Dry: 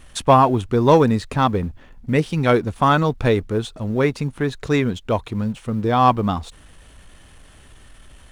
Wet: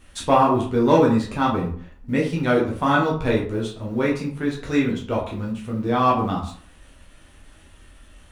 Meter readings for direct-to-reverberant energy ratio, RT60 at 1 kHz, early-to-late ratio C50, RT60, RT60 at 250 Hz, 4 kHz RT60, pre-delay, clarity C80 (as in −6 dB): −4.0 dB, 0.50 s, 7.0 dB, 0.50 s, 0.50 s, 0.30 s, 8 ms, 10.5 dB